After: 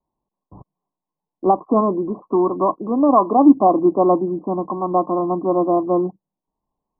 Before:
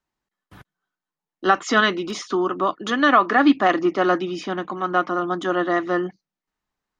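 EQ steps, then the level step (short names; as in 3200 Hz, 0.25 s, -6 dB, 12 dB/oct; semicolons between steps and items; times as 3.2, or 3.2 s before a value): Chebyshev low-pass 1100 Hz, order 8; +5.5 dB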